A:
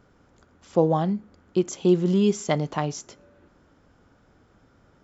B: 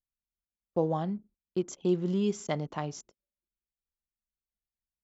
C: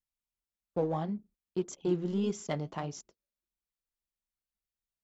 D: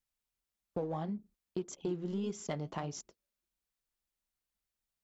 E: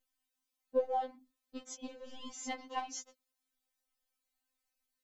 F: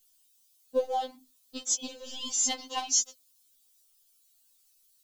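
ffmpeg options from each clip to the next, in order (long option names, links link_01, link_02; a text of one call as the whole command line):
ffmpeg -i in.wav -af "anlmdn=0.251,agate=range=-20dB:threshold=-46dB:ratio=16:detection=peak,volume=-8dB" out.wav
ffmpeg -i in.wav -filter_complex "[0:a]asplit=2[link_01][link_02];[link_02]asoftclip=type=hard:threshold=-29.5dB,volume=-10dB[link_03];[link_01][link_03]amix=inputs=2:normalize=0,flanger=delay=0.3:depth=8.8:regen=-59:speed=1.7:shape=sinusoidal" out.wav
ffmpeg -i in.wav -af "acompressor=threshold=-39dB:ratio=3,volume=3dB" out.wav
ffmpeg -i in.wav -af "afftfilt=real='re*3.46*eq(mod(b,12),0)':imag='im*3.46*eq(mod(b,12),0)':win_size=2048:overlap=0.75,volume=5dB" out.wav
ffmpeg -i in.wav -af "aexciter=amount=6.2:drive=3.1:freq=2900,volume=3.5dB" out.wav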